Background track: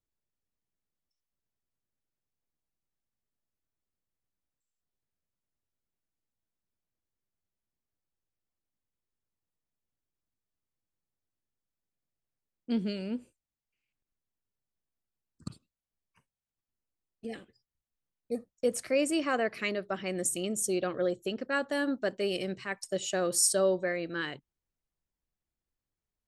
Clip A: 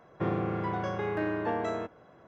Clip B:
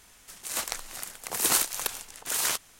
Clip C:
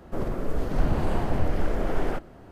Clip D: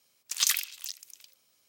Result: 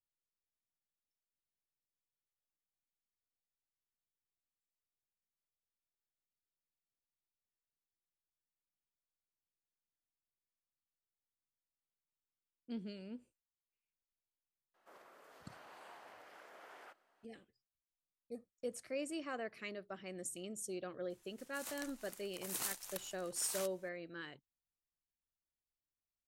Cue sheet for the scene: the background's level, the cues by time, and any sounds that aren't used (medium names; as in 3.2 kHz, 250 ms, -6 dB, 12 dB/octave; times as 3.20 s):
background track -13.5 dB
14.74 s: add C -17.5 dB + high-pass 1 kHz
21.10 s: add B -18 dB + treble shelf 12 kHz +4.5 dB
not used: A, D